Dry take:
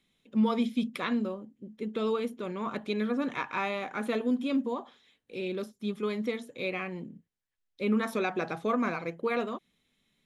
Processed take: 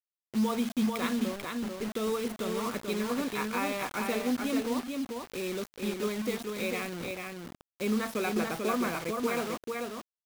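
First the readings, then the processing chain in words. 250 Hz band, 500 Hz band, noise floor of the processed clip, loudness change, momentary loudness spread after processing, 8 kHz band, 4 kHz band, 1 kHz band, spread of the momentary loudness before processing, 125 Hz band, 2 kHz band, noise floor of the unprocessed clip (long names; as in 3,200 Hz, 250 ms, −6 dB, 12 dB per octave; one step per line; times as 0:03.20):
−0.5 dB, 0.0 dB, below −85 dBFS, −0.5 dB, 7 LU, can't be measured, +3.5 dB, 0.0 dB, 9 LU, 0.0 dB, +0.5 dB, −80 dBFS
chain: in parallel at −2 dB: downward compressor 6 to 1, threshold −36 dBFS, peak gain reduction 14 dB
on the sum: bit reduction 6 bits
single-tap delay 441 ms −4 dB
level −4 dB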